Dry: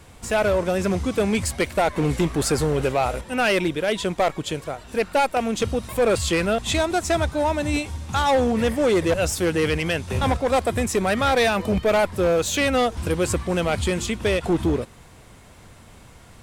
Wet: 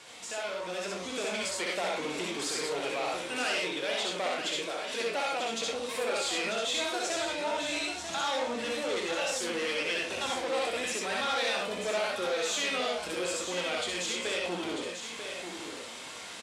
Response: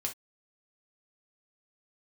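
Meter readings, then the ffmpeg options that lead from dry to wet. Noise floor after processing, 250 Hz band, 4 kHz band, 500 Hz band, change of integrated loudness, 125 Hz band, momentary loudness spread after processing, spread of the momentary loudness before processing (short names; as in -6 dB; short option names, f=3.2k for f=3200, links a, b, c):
-43 dBFS, -15.5 dB, -2.0 dB, -11.0 dB, -9.5 dB, -25.5 dB, 6 LU, 5 LU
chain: -filter_complex "[0:a]highshelf=f=2.3k:g=10,acompressor=threshold=-36dB:ratio=2.5,asplit=2[a][b];[1:a]atrim=start_sample=2205,adelay=63[c];[b][c]afir=irnorm=-1:irlink=0,volume=-1dB[d];[a][d]amix=inputs=2:normalize=0,flanger=delay=7.6:depth=9.4:regen=63:speed=0.81:shape=sinusoidal,equalizer=f=3.4k:w=1.5:g=3,asoftclip=type=tanh:threshold=-30dB,asplit=2[e][f];[f]adelay=28,volume=-11.5dB[g];[e][g]amix=inputs=2:normalize=0,aecho=1:1:942:0.422,dynaudnorm=f=220:g=7:m=4.5dB,highpass=350,lowpass=6.9k"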